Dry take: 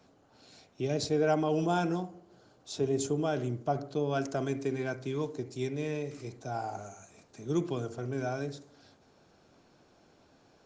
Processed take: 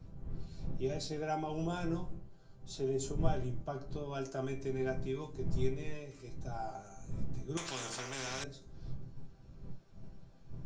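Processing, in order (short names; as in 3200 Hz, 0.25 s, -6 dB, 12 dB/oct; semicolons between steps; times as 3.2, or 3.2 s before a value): wind noise 95 Hz -34 dBFS; resonator bank C3 major, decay 0.21 s; 7.57–8.44 spectral compressor 4:1; gain +5.5 dB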